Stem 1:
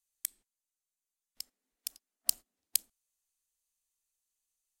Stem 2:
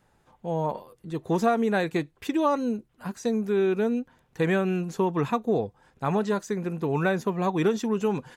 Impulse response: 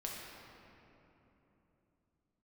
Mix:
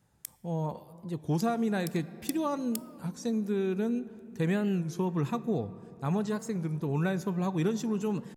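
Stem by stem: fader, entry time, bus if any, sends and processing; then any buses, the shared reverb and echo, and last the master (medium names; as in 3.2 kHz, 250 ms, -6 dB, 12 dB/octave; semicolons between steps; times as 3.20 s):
-5.0 dB, 0.00 s, send -13.5 dB, compression, threshold -30 dBFS, peak gain reduction 10 dB
-10.0 dB, 0.00 s, send -13 dB, high-pass 66 Hz; tone controls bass +10 dB, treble +8 dB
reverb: on, RT60 3.3 s, pre-delay 6 ms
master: warped record 33 1/3 rpm, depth 160 cents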